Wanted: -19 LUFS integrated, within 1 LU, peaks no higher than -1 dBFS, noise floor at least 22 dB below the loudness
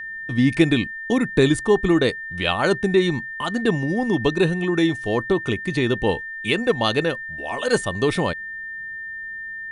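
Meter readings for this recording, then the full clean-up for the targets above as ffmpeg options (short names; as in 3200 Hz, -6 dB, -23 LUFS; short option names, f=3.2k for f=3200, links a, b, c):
steady tone 1800 Hz; tone level -30 dBFS; loudness -21.5 LUFS; peak -4.0 dBFS; loudness target -19.0 LUFS
-> -af "bandreject=f=1.8k:w=30"
-af "volume=2.5dB"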